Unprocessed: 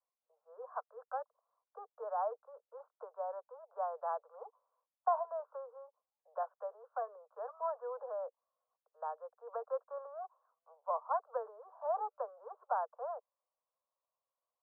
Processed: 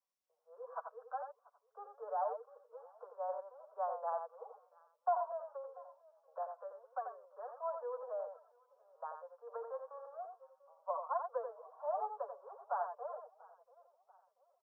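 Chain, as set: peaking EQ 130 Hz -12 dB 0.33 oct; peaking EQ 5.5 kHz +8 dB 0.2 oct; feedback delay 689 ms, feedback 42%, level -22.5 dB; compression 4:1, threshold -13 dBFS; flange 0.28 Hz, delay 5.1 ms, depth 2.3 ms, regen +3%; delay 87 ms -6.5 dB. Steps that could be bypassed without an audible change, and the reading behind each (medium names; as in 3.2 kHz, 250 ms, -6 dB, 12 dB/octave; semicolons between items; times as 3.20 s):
peaking EQ 130 Hz: input has nothing below 400 Hz; peaking EQ 5.5 kHz: input has nothing above 1.5 kHz; compression, threshold -13 dBFS: peak at its input -19.5 dBFS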